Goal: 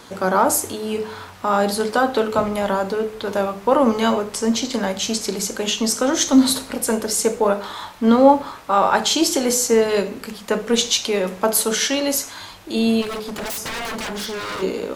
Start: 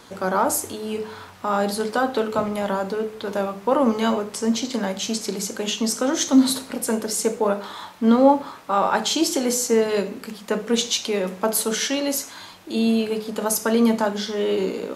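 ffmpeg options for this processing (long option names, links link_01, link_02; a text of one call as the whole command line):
ffmpeg -i in.wav -filter_complex "[0:a]asubboost=boost=4:cutoff=82,asplit=3[link_01][link_02][link_03];[link_01]afade=type=out:start_time=13.01:duration=0.02[link_04];[link_02]aeval=exprs='0.0473*(abs(mod(val(0)/0.0473+3,4)-2)-1)':channel_layout=same,afade=type=in:start_time=13.01:duration=0.02,afade=type=out:start_time=14.61:duration=0.02[link_05];[link_03]afade=type=in:start_time=14.61:duration=0.02[link_06];[link_04][link_05][link_06]amix=inputs=3:normalize=0,volume=4dB" out.wav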